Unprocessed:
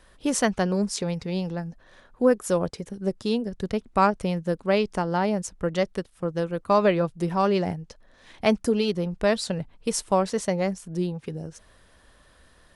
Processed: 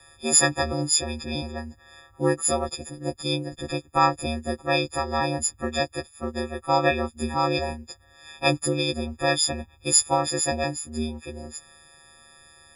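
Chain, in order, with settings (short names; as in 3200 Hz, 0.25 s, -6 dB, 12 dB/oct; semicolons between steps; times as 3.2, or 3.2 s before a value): frequency quantiser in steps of 6 st; ring modulator 77 Hz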